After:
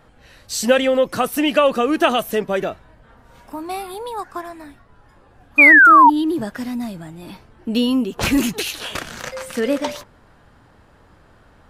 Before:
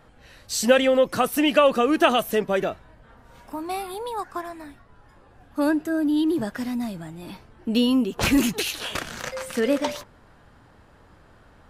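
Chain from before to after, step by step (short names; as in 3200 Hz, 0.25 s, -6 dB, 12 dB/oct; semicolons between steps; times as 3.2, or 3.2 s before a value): painted sound fall, 5.58–6.1, 880–2500 Hz -10 dBFS; gain +2 dB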